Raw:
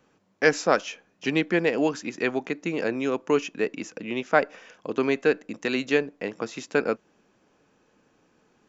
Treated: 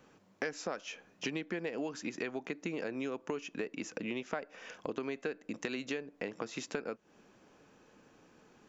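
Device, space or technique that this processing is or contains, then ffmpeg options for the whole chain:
serial compression, leveller first: -af "acompressor=threshold=-27dB:ratio=2,acompressor=threshold=-38dB:ratio=4,volume=2dB"

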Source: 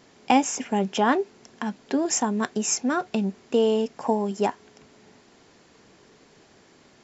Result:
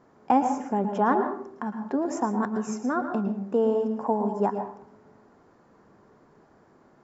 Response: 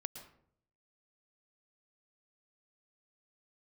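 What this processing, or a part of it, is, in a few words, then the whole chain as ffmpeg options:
bathroom: -filter_complex "[0:a]highshelf=f=1.9k:t=q:w=1.5:g=-14[a];[1:a]atrim=start_sample=2205[b];[a][b]afir=irnorm=-1:irlink=0"

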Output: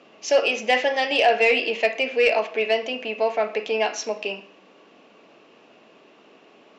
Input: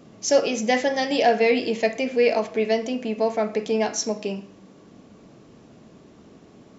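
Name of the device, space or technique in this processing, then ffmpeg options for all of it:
intercom: -af "highpass=490,lowpass=3.9k,equalizer=f=2.7k:t=o:w=0.34:g=10,asoftclip=type=tanh:threshold=-10.5dB,volume=3dB"

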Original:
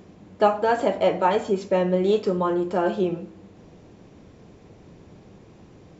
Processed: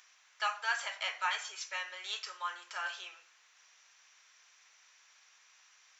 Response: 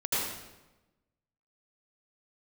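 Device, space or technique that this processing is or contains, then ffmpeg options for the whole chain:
headphones lying on a table: -af "highpass=f=1.4k:w=0.5412,highpass=f=1.4k:w=1.3066,equalizer=f=5.9k:t=o:w=0.22:g=9.5"

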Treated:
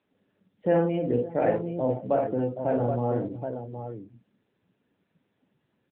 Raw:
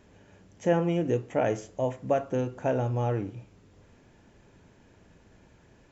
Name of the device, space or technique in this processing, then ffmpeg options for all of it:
mobile call with aggressive noise cancelling: -filter_complex "[0:a]asplit=3[a][b][c];[a]afade=t=out:st=2.46:d=0.02[d];[b]lowpass=f=5.8k:w=0.5412,lowpass=f=5.8k:w=1.3066,afade=t=in:st=2.46:d=0.02,afade=t=out:st=3.15:d=0.02[e];[c]afade=t=in:st=3.15:d=0.02[f];[d][e][f]amix=inputs=3:normalize=0,highpass=f=110:w=0.5412,highpass=f=110:w=1.3066,aecho=1:1:50|54|95|554|774:0.631|0.376|0.299|0.158|0.501,afftdn=nr=17:nf=-38" -ar 8000 -c:a libopencore_amrnb -b:a 10200

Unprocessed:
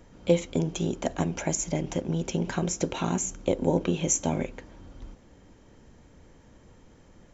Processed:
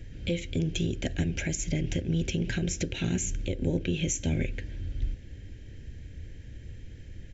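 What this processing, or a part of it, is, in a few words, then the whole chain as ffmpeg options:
car stereo with a boomy subwoofer: -af "firequalizer=gain_entry='entry(330,0);entry(1100,-25);entry(1600,1);entry(2600,4);entry(6200,-4)':delay=0.05:min_phase=1,lowshelf=f=140:t=q:w=1.5:g=9,alimiter=limit=-22dB:level=0:latency=1:release=330,volume=4dB"

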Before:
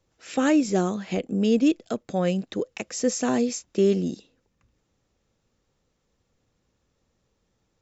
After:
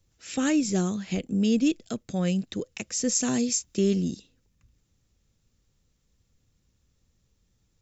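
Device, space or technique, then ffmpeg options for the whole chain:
smiley-face EQ: -filter_complex "[0:a]asettb=1/sr,asplit=3[a][b][c];[a]atrim=end=3.154[d];[b]atrim=start=3.15:end=3.79,asetpts=PTS-STARTPTS,afade=t=in:d=0.004:c=qsin,afade=t=out:st=0.636:d=0.004:c=qsin,highshelf=f=5k:g=5.5[e];[c]atrim=start=3.786[f];[d][e]acrossfade=d=0.004:c1=hsin:c2=qsin[g];[g][f]acrossfade=d=0.004:c1=qsin:c2=hsin,lowshelf=f=160:g=7.5,equalizer=f=670:t=o:w=2.6:g=-9,highshelf=f=6.4k:g=7"

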